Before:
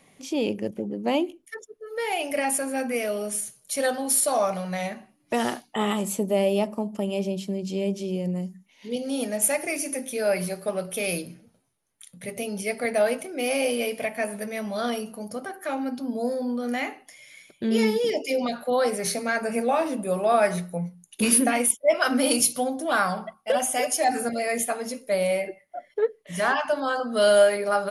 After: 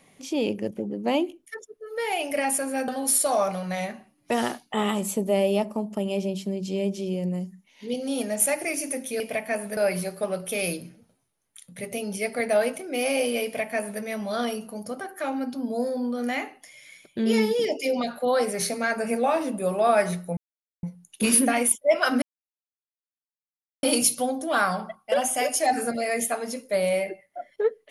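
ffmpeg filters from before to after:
-filter_complex "[0:a]asplit=6[a][b][c][d][e][f];[a]atrim=end=2.882[g];[b]atrim=start=3.898:end=10.222[h];[c]atrim=start=13.888:end=14.462[i];[d]atrim=start=10.218:end=20.82,asetpts=PTS-STARTPTS,afade=t=out:st=10.598:d=0.004:c=hsin,apad=pad_dur=0.46[j];[e]atrim=start=20.82:end=22.21,asetpts=PTS-STARTPTS,afade=t=in:d=0.004:c=hsin,afade=t=out:st=1.386:d=0.004:c=hsin,apad=pad_dur=1.61[k];[f]atrim=start=22.21,asetpts=PTS-STARTPTS,afade=t=in:d=0.004:c=hsin[l];[g][h]acrossfade=d=0.004:c1=hsin:c2=hsin[m];[m][i]acrossfade=d=0.004:c1=hsin:c2=hsin[n];[j][k][l]concat=n=3:v=0:a=1[o];[n][o]acrossfade=d=0.004:c1=hsin:c2=hsin"

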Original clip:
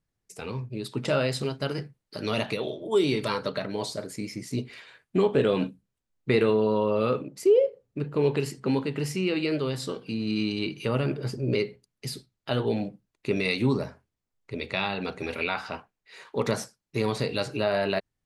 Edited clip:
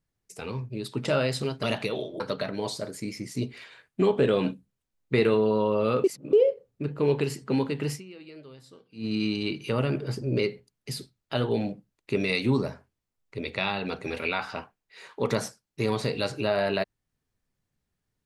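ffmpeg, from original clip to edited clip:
-filter_complex "[0:a]asplit=7[a][b][c][d][e][f][g];[a]atrim=end=1.632[h];[b]atrim=start=2.308:end=2.882[i];[c]atrim=start=3.358:end=7.202[j];[d]atrim=start=7.198:end=7.492,asetpts=PTS-STARTPTS,areverse[k];[e]atrim=start=7.488:end=9.21,asetpts=PTS-STARTPTS,afade=t=out:st=1.602:d=0.12:c=qua:silence=0.112202[l];[f]atrim=start=9.21:end=10.09,asetpts=PTS-STARTPTS,volume=-19dB[m];[g]atrim=start=10.09,asetpts=PTS-STARTPTS,afade=t=in:d=0.12:c=qua:silence=0.112202[n];[h][i]acrossfade=d=0.004:c1=hsin:c2=hsin[o];[o][j]acrossfade=d=0.004:c1=hsin:c2=hsin[p];[p][k]acrossfade=d=0.004:c1=hsin:c2=hsin[q];[l][m][n]concat=n=3:v=0:a=1[r];[q][r]acrossfade=d=0.004:c1=hsin:c2=hsin"

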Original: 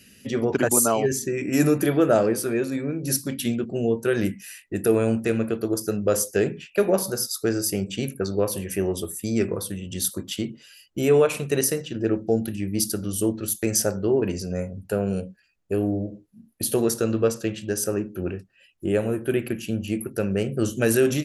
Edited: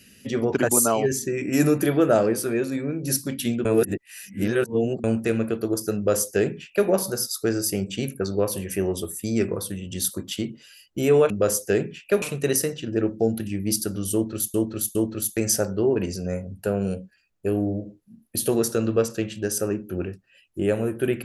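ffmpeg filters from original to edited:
-filter_complex "[0:a]asplit=7[a][b][c][d][e][f][g];[a]atrim=end=3.652[h];[b]atrim=start=3.648:end=5.042,asetpts=PTS-STARTPTS,areverse[i];[c]atrim=start=5.038:end=11.302[j];[d]atrim=start=5.958:end=6.882[k];[e]atrim=start=11.298:end=13.622[l];[f]atrim=start=13.208:end=13.622[m];[g]atrim=start=13.208[n];[h][i]acrossfade=d=0.004:c1=hsin:c2=hsin[o];[o][j]acrossfade=d=0.004:c1=hsin:c2=hsin[p];[p][k]acrossfade=d=0.004:c1=hsin:c2=hsin[q];[q][l]acrossfade=d=0.004:c1=hsin:c2=hsin[r];[r][m]acrossfade=d=0.004:c1=hsin:c2=hsin[s];[s][n]acrossfade=d=0.004:c1=hsin:c2=hsin"

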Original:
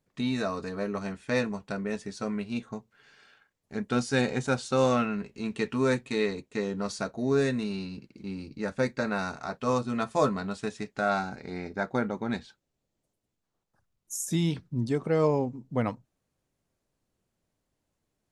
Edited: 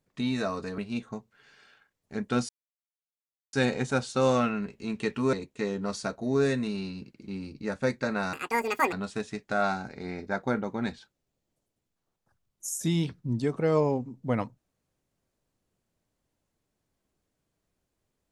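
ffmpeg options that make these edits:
-filter_complex "[0:a]asplit=6[a][b][c][d][e][f];[a]atrim=end=0.782[g];[b]atrim=start=2.378:end=4.09,asetpts=PTS-STARTPTS,afade=t=out:st=1.708:d=0.004:c=hsin,apad=pad_dur=1.04[h];[c]atrim=start=4.09:end=5.892,asetpts=PTS-STARTPTS,afade=t=in:d=0.004:c=hsin[i];[d]atrim=start=6.288:end=9.294[j];[e]atrim=start=9.29:end=10.4,asetpts=PTS-STARTPTS,asetrate=82026,aresample=44100[k];[f]atrim=start=10.396[l];[h][i]concat=n=2:v=0:a=1[m];[g][m]acrossfade=d=0.004:c1=hsin:c2=hsin[n];[n][j]acrossfade=d=0.004:c1=hsin:c2=hsin[o];[o][k]acrossfade=d=0.004:c1=hsin:c2=hsin[p];[p][l]acrossfade=d=0.004:c1=hsin:c2=hsin"

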